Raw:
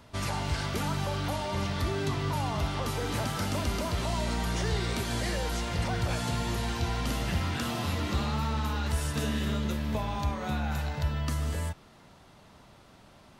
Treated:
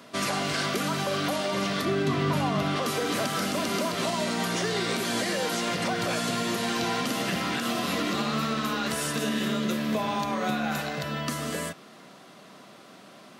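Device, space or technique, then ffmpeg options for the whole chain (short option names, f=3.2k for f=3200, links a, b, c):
PA system with an anti-feedback notch: -filter_complex "[0:a]highpass=f=180:w=0.5412,highpass=f=180:w=1.3066,asuperstop=centerf=880:order=4:qfactor=7.1,alimiter=level_in=1.5dB:limit=-24dB:level=0:latency=1:release=103,volume=-1.5dB,asettb=1/sr,asplit=3[a][b][c];[a]atrim=end=1.854[d];[b]atrim=start=1.85:end=2.76,asetpts=PTS-STARTPTS,afade=t=in:d=0.004:c=qsin,afade=t=out:st=0.906:d=0.004:c=qsin,bass=f=250:g=7,treble=f=4k:g=-6[e];[c]atrim=start=2.756[f];[d][e]acrossfade=d=0.004:c1=hsin:c2=qsin[g];[g][f]acrossfade=d=0.004:c1=qsin:c2=hsin,volume=7.5dB"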